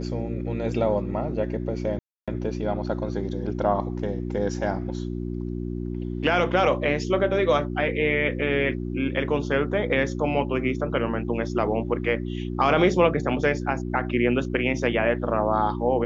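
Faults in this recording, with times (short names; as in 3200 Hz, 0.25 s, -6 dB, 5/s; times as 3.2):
hum 60 Hz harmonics 6 -30 dBFS
1.99–2.28 gap 0.286 s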